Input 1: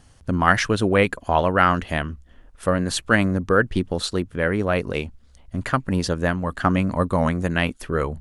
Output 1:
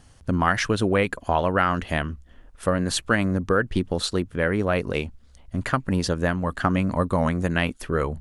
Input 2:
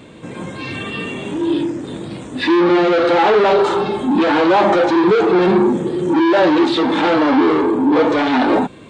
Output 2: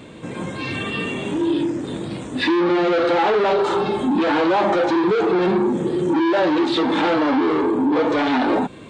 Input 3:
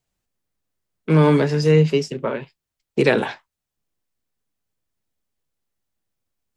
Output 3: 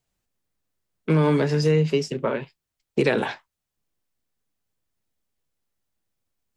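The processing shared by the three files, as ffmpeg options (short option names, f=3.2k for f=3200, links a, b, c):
-af "acompressor=threshold=-17dB:ratio=3"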